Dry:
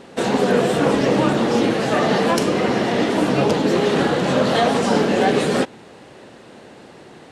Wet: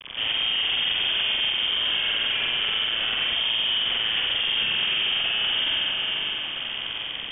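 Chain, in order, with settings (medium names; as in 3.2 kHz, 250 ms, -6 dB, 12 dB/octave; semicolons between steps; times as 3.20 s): CVSD coder 32 kbps; bass shelf 86 Hz +10 dB; in parallel at -9.5 dB: wavefolder -20.5 dBFS; on the sum: AM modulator 110 Hz, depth 35%; mains buzz 100 Hz, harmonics 4, -38 dBFS -3 dB/octave; bit crusher 5-bit; on a send: echo that smears into a reverb 557 ms, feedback 51%, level -12.5 dB; on the sum: spring tank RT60 1.6 s, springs 45 ms, chirp 25 ms, DRR -9.5 dB; peak limiter -10 dBFS, peak gain reduction 13 dB; frequency inversion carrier 3.4 kHz; trim -7 dB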